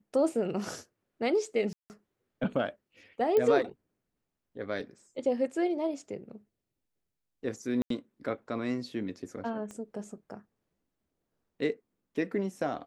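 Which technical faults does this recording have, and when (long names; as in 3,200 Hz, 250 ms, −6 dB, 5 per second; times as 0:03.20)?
0:01.73–0:01.90: drop-out 169 ms
0:03.37: click −17 dBFS
0:07.82–0:07.90: drop-out 83 ms
0:09.71: click −30 dBFS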